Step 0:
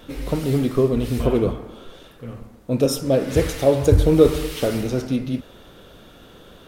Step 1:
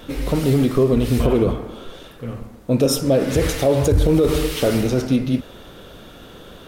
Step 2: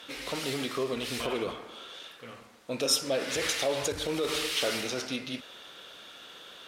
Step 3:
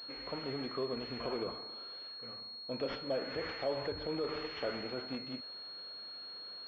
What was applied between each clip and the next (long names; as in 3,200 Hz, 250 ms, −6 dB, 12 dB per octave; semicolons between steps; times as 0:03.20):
brickwall limiter −13 dBFS, peak gain reduction 11.5 dB; level +5 dB
resonant band-pass 3,600 Hz, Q 0.59
high-frequency loss of the air 77 metres; switching amplifier with a slow clock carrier 4,300 Hz; level −5.5 dB